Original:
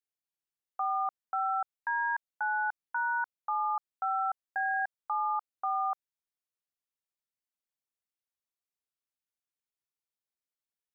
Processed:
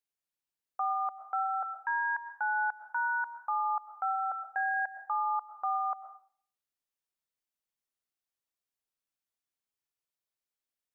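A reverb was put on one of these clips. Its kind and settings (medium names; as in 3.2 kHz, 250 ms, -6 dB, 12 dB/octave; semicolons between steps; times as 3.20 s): algorithmic reverb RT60 0.5 s, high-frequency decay 0.7×, pre-delay 75 ms, DRR 10 dB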